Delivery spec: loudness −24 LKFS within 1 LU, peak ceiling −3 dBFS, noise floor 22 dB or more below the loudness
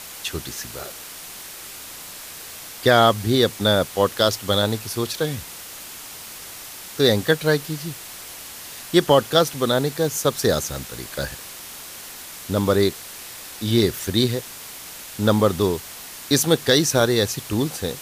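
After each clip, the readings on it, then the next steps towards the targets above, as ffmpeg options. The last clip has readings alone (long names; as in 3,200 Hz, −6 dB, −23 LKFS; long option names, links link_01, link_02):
background noise floor −38 dBFS; target noise floor −43 dBFS; integrated loudness −21.0 LKFS; sample peak −3.0 dBFS; target loudness −24.0 LKFS
→ -af "afftdn=noise_reduction=6:noise_floor=-38"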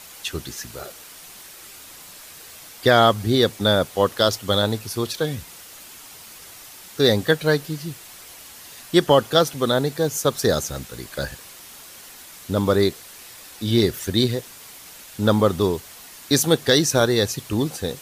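background noise floor −43 dBFS; integrated loudness −20.5 LKFS; sample peak −3.5 dBFS; target loudness −24.0 LKFS
→ -af "volume=-3.5dB"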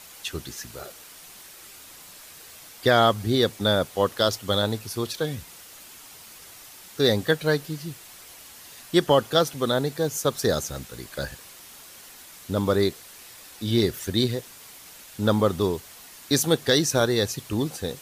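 integrated loudness −24.0 LKFS; sample peak −7.0 dBFS; background noise floor −46 dBFS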